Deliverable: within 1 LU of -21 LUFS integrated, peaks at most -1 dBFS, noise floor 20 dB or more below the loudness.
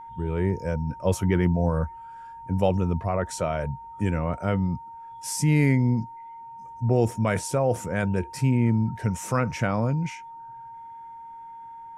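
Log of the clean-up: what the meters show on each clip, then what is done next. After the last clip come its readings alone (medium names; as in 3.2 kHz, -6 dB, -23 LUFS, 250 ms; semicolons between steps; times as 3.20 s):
steady tone 920 Hz; tone level -39 dBFS; loudness -25.5 LUFS; peak level -8.5 dBFS; loudness target -21.0 LUFS
-> band-stop 920 Hz, Q 30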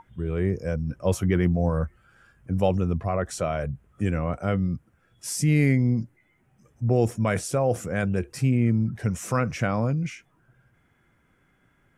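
steady tone not found; loudness -25.5 LUFS; peak level -9.0 dBFS; loudness target -21.0 LUFS
-> trim +4.5 dB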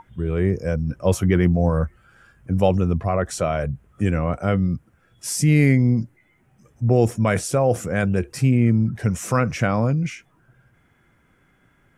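loudness -21.0 LUFS; peak level -4.5 dBFS; noise floor -61 dBFS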